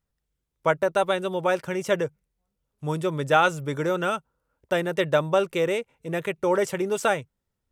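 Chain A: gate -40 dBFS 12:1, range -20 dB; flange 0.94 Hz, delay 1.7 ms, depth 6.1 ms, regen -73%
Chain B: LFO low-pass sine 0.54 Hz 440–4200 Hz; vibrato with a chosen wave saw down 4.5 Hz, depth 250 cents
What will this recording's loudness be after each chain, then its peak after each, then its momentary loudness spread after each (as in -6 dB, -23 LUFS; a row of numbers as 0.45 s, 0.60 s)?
-29.5 LUFS, -23.0 LUFS; -10.0 dBFS, -5.5 dBFS; 8 LU, 8 LU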